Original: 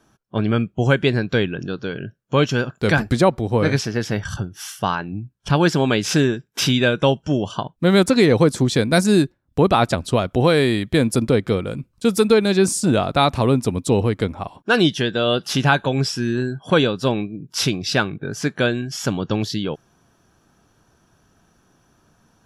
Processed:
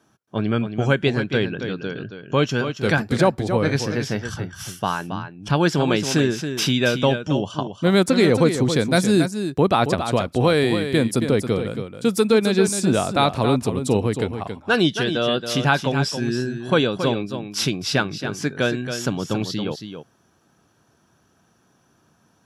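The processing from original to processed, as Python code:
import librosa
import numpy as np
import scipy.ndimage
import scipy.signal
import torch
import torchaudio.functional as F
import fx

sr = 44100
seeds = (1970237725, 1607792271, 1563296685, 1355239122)

y = scipy.signal.sosfilt(scipy.signal.butter(2, 91.0, 'highpass', fs=sr, output='sos'), x)
y = y + 10.0 ** (-8.5 / 20.0) * np.pad(y, (int(275 * sr / 1000.0), 0))[:len(y)]
y = y * librosa.db_to_amplitude(-2.0)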